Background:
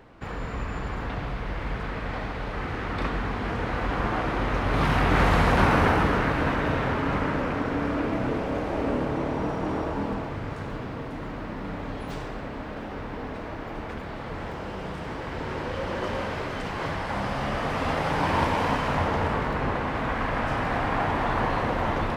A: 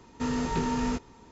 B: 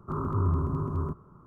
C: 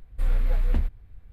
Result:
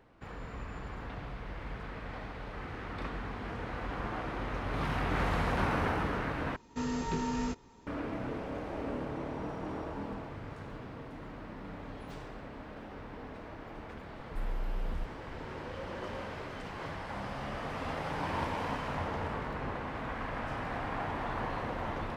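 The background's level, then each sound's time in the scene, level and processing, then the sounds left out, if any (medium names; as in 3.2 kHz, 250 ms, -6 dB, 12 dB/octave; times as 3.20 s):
background -10.5 dB
6.56 s: replace with A -5 dB
14.17 s: add C -8 dB + peak limiter -21 dBFS
not used: B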